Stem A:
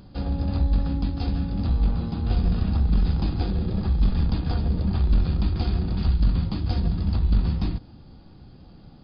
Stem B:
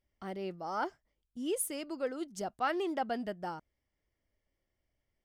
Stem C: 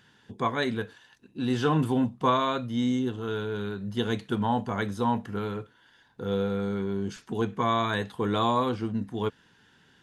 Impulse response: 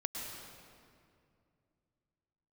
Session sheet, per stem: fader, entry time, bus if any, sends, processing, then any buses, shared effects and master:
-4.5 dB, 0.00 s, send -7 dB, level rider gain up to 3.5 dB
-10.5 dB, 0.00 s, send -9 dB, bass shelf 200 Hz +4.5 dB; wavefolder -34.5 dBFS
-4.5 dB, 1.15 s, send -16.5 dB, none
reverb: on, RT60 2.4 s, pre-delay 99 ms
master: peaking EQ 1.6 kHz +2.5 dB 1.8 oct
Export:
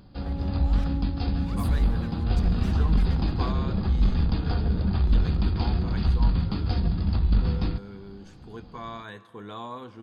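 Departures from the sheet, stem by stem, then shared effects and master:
stem A: send off; stem C -4.5 dB -> -15.0 dB

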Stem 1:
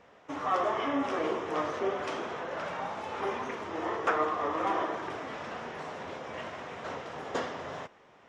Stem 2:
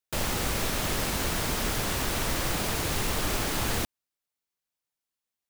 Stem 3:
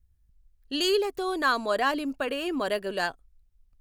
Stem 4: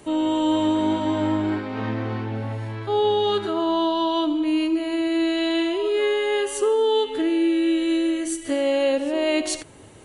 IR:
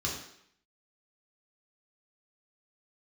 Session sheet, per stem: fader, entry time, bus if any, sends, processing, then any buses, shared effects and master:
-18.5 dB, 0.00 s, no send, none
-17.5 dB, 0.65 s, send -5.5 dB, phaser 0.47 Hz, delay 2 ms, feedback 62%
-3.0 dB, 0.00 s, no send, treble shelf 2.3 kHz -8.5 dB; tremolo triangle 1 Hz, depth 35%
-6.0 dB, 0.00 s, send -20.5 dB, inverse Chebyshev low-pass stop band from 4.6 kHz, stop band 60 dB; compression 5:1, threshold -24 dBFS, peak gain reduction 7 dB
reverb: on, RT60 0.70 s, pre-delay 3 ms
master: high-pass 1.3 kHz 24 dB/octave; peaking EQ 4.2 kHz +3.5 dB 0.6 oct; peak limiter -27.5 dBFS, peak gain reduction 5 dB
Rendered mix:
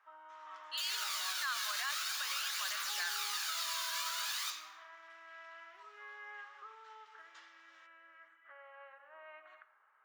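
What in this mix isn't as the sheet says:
stem 3: missing tremolo triangle 1 Hz, depth 35%; reverb return +8.0 dB

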